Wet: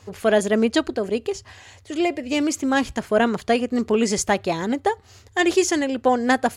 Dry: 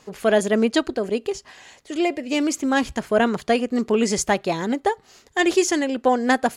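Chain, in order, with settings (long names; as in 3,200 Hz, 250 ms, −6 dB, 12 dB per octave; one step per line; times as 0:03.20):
noise in a band 70–110 Hz −52 dBFS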